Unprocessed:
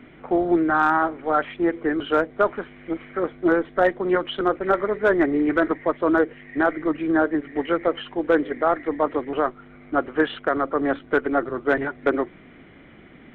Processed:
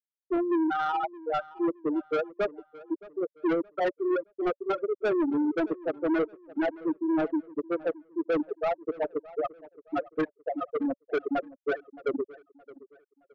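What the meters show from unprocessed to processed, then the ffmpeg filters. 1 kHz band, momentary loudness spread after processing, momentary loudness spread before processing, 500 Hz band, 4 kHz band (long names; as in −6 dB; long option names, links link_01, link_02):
−9.0 dB, 8 LU, 6 LU, −7.0 dB, −11.0 dB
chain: -filter_complex "[0:a]highpass=frequency=85:poles=1,afftfilt=real='re*gte(hypot(re,im),0.562)':imag='im*gte(hypot(re,im),0.562)':win_size=1024:overlap=0.75,bandreject=frequency=570:width=12,acrossover=split=170|980[link_01][link_02][link_03];[link_03]alimiter=level_in=1.5dB:limit=-24dB:level=0:latency=1:release=121,volume=-1.5dB[link_04];[link_01][link_02][link_04]amix=inputs=3:normalize=0,asoftclip=type=tanh:threshold=-22dB,asplit=2[link_05][link_06];[link_06]adelay=619,lowpass=frequency=3600:poles=1,volume=-19.5dB,asplit=2[link_07][link_08];[link_08]adelay=619,lowpass=frequency=3600:poles=1,volume=0.36,asplit=2[link_09][link_10];[link_10]adelay=619,lowpass=frequency=3600:poles=1,volume=0.36[link_11];[link_07][link_09][link_11]amix=inputs=3:normalize=0[link_12];[link_05][link_12]amix=inputs=2:normalize=0"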